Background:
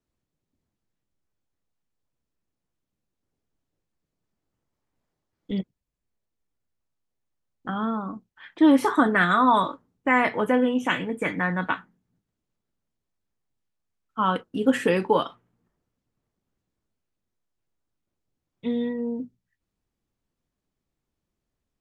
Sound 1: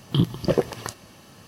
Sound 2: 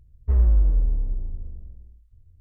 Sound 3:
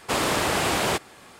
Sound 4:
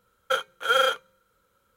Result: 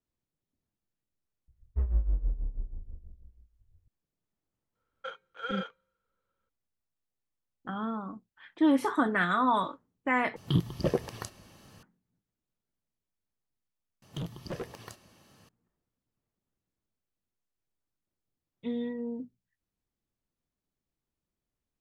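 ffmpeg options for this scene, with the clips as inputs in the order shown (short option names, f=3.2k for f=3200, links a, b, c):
-filter_complex "[1:a]asplit=2[a][b];[0:a]volume=-7dB[c];[2:a]tremolo=f=6.2:d=0.79[d];[4:a]lowpass=3.3k[e];[a]lowshelf=f=75:g=9[f];[b]asoftclip=type=hard:threshold=-21dB[g];[c]asplit=3[h][i][j];[h]atrim=end=10.364[k];[f]atrim=end=1.47,asetpts=PTS-STARTPTS,volume=-7.5dB[l];[i]atrim=start=11.826:end=14.024[m];[g]atrim=end=1.47,asetpts=PTS-STARTPTS,volume=-11.5dB[n];[j]atrim=start=15.486[o];[d]atrim=end=2.4,asetpts=PTS-STARTPTS,volume=-7dB,afade=t=in:d=0.004:c=hsin,afade=t=out:st=2.396:d=0.004:c=hsin,adelay=1480[p];[e]atrim=end=1.76,asetpts=PTS-STARTPTS,volume=-15dB,afade=t=in:d=0.02,afade=t=out:st=1.74:d=0.02,adelay=4740[q];[k][l]acrossfade=d=0.004:c1=hsin:c2=hsin[r];[r][m]acrossfade=d=0.004:c1=hsin:c2=hsin[s];[s][n]acrossfade=d=0.004:c1=hsin:c2=hsin[t];[t][o]acrossfade=d=0.004:c1=hsin:c2=hsin[u];[u][p][q]amix=inputs=3:normalize=0"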